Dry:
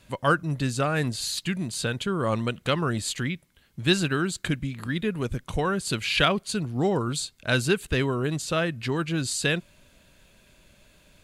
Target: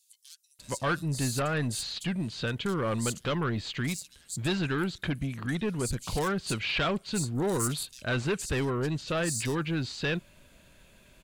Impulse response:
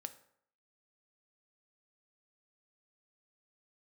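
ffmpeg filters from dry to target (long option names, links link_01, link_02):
-filter_complex "[0:a]asettb=1/sr,asplit=3[link_01][link_02][link_03];[link_01]atrim=end=7.354[link_04];[link_02]atrim=start=7.35:end=7.83,asetpts=PTS-STARTPTS,afade=type=in:duration=0.004:curve=qsin,afade=type=out:start_time=0.476:duration=0.004:curve=qsin,highshelf=frequency=5900:width_type=q:width=1.5:gain=8[link_05];[link_03]atrim=start=7.826[link_06];[link_04][link_05]acrossfade=duration=0.004:curve1=hsin:curve2=qsin[link_07];[link_07][link_06]acrossfade=duration=0.004:curve1=qsin:curve2=hsin,asoftclip=type=tanh:threshold=-23.5dB,acrossover=split=4900[link_08][link_09];[link_08]adelay=590[link_10];[link_10][link_09]amix=inputs=2:normalize=0"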